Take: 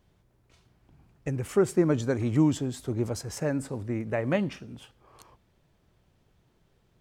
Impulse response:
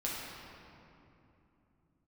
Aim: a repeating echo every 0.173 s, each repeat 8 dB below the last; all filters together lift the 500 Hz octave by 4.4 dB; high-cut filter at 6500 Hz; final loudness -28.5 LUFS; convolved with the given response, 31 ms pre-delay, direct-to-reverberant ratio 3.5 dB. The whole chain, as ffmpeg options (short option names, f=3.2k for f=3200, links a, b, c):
-filter_complex "[0:a]lowpass=6.5k,equalizer=f=500:t=o:g=6,aecho=1:1:173|346|519|692|865:0.398|0.159|0.0637|0.0255|0.0102,asplit=2[a][b];[1:a]atrim=start_sample=2205,adelay=31[c];[b][c]afir=irnorm=-1:irlink=0,volume=-8dB[d];[a][d]amix=inputs=2:normalize=0,volume=-5.5dB"